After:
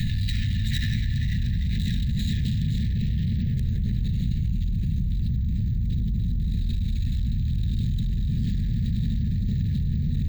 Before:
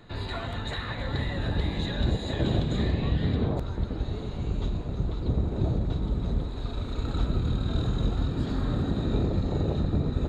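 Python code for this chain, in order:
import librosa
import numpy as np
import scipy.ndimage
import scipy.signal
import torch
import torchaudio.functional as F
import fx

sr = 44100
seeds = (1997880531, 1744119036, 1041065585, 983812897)

y = fx.quant_companded(x, sr, bits=8)
y = fx.tube_stage(y, sr, drive_db=31.0, bias=0.6)
y = fx.bass_treble(y, sr, bass_db=12, treble_db=6)
y = np.repeat(y[::2], 2)[:len(y)]
y = scipy.signal.sosfilt(scipy.signal.cheby1(5, 1.0, [230.0, 1700.0], 'bandstop', fs=sr, output='sos'), y)
y = fx.peak_eq(y, sr, hz=1500.0, db=-8.0, octaves=0.23)
y = fx.small_body(y, sr, hz=(580.0, 840.0), ring_ms=45, db=17)
y = fx.echo_tape(y, sr, ms=293, feedback_pct=67, wet_db=-5.5, lp_hz=2400.0, drive_db=19.0, wow_cents=7)
y = fx.env_flatten(y, sr, amount_pct=100)
y = y * 10.0 ** (-3.5 / 20.0)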